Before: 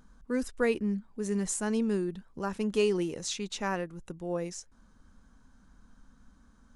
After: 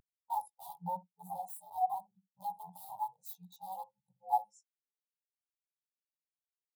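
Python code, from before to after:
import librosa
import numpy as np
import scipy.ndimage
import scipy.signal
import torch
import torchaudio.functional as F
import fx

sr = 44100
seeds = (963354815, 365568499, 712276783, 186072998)

p1 = fx.frame_reverse(x, sr, frame_ms=42.0)
p2 = np.sign(p1) * np.maximum(np.abs(p1) - 10.0 ** (-54.0 / 20.0), 0.0)
p3 = p1 + (p2 * librosa.db_to_amplitude(-8.0))
p4 = fx.high_shelf(p3, sr, hz=3400.0, db=3.5)
p5 = (np.mod(10.0 ** (27.0 / 20.0) * p4 + 1.0, 2.0) - 1.0) / 10.0 ** (27.0 / 20.0)
p6 = scipy.signal.sosfilt(scipy.signal.butter(2, 130.0, 'highpass', fs=sr, output='sos'), p5)
p7 = fx.rider(p6, sr, range_db=5, speed_s=0.5)
p8 = fx.curve_eq(p7, sr, hz=(170.0, 280.0, 850.0, 1600.0, 3800.0, 6100.0, 12000.0), db=(0, -29, 10, -20, 2, 0, 12))
p9 = fx.echo_filtered(p8, sr, ms=62, feedback_pct=17, hz=920.0, wet_db=-7.0)
p10 = fx.spectral_expand(p9, sr, expansion=2.5)
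y = p10 * librosa.db_to_amplitude(-7.5)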